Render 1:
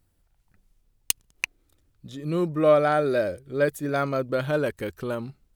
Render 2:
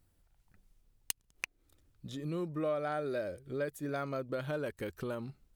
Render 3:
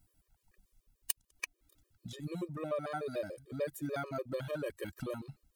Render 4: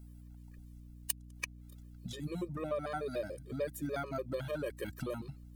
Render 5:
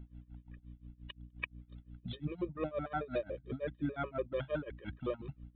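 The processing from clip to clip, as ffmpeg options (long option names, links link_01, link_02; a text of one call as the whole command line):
ffmpeg -i in.wav -af "acompressor=threshold=-35dB:ratio=2.5,volume=-2.5dB" out.wav
ffmpeg -i in.wav -af "highshelf=frequency=5300:gain=6.5,afftfilt=real='re*gt(sin(2*PI*6.8*pts/sr)*(1-2*mod(floor(b*sr/1024/320),2)),0)':imag='im*gt(sin(2*PI*6.8*pts/sr)*(1-2*mod(floor(b*sr/1024/320),2)),0)':win_size=1024:overlap=0.75,volume=1dB" out.wav
ffmpeg -i in.wav -filter_complex "[0:a]asplit=2[link_01][link_02];[link_02]acompressor=threshold=-46dB:ratio=6,volume=2dB[link_03];[link_01][link_03]amix=inputs=2:normalize=0,aeval=exprs='val(0)+0.00398*(sin(2*PI*60*n/s)+sin(2*PI*2*60*n/s)/2+sin(2*PI*3*60*n/s)/3+sin(2*PI*4*60*n/s)/4+sin(2*PI*5*60*n/s)/5)':channel_layout=same,volume=-2.5dB" out.wav
ffmpeg -i in.wav -af "aresample=8000,aresample=44100,tremolo=f=5.7:d=0.92,volume=4dB" out.wav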